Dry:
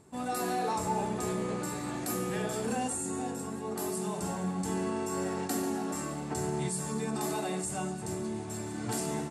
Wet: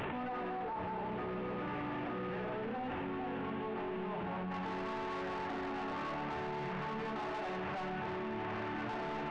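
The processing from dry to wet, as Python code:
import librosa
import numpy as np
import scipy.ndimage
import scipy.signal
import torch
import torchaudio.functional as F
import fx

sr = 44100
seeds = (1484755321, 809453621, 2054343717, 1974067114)

y = fx.delta_mod(x, sr, bps=16000, step_db=-42.5)
y = fx.peak_eq(y, sr, hz=1200.0, db=fx.steps((0.0, 4.5), (4.51, 13.0)), octaves=3.0)
y = 10.0 ** (-29.5 / 20.0) * np.tanh(y / 10.0 ** (-29.5 / 20.0))
y = fx.comb_fb(y, sr, f0_hz=900.0, decay_s=0.33, harmonics='all', damping=0.0, mix_pct=70)
y = fx.env_flatten(y, sr, amount_pct=100)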